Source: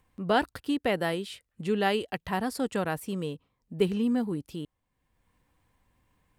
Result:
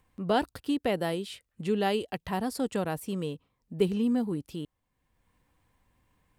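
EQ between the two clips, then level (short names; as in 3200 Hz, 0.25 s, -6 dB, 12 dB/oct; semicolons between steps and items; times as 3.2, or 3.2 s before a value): dynamic EQ 1700 Hz, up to -6 dB, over -42 dBFS, Q 0.98; 0.0 dB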